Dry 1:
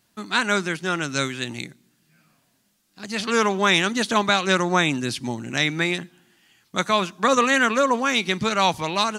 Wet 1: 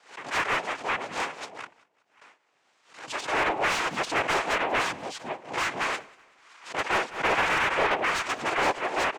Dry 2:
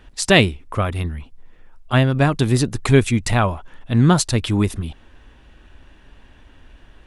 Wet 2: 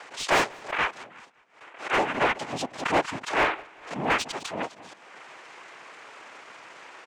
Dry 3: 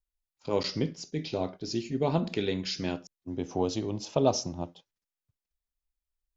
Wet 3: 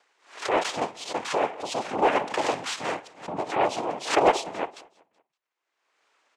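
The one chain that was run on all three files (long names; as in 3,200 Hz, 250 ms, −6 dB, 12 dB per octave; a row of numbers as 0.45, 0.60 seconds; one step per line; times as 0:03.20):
high-pass filter 590 Hz 12 dB per octave
noise gate with hold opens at −51 dBFS
noise reduction from a noise print of the clip's start 10 dB
low-pass filter 4,600 Hz 12 dB per octave
cochlear-implant simulation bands 4
upward compression, threshold −36 dBFS
mid-hump overdrive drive 22 dB, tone 1,100 Hz, clips at −4 dBFS
repeating echo 189 ms, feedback 46%, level −24 dB
background raised ahead of every attack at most 140 dB per second
loudness normalisation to −27 LKFS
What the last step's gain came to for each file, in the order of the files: −7.5, −5.0, +0.5 decibels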